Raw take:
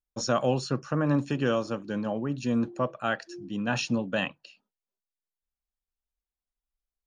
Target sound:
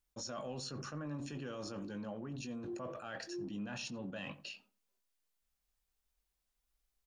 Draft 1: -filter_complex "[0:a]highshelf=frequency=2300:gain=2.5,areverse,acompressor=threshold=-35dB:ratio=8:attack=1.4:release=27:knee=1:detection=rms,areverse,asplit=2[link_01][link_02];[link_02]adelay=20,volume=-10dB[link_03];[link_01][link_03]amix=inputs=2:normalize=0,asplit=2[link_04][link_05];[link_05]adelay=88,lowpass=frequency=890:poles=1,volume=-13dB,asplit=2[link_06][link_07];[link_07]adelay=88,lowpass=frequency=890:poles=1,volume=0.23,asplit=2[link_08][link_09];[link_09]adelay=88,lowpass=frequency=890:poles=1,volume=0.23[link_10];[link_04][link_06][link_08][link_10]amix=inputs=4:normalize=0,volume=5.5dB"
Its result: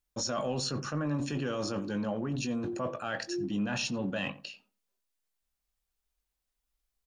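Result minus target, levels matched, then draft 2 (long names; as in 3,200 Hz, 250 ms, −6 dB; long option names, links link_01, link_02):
downward compressor: peak gain reduction −10.5 dB
-filter_complex "[0:a]highshelf=frequency=2300:gain=2.5,areverse,acompressor=threshold=-47dB:ratio=8:attack=1.4:release=27:knee=1:detection=rms,areverse,asplit=2[link_01][link_02];[link_02]adelay=20,volume=-10dB[link_03];[link_01][link_03]amix=inputs=2:normalize=0,asplit=2[link_04][link_05];[link_05]adelay=88,lowpass=frequency=890:poles=1,volume=-13dB,asplit=2[link_06][link_07];[link_07]adelay=88,lowpass=frequency=890:poles=1,volume=0.23,asplit=2[link_08][link_09];[link_09]adelay=88,lowpass=frequency=890:poles=1,volume=0.23[link_10];[link_04][link_06][link_08][link_10]amix=inputs=4:normalize=0,volume=5.5dB"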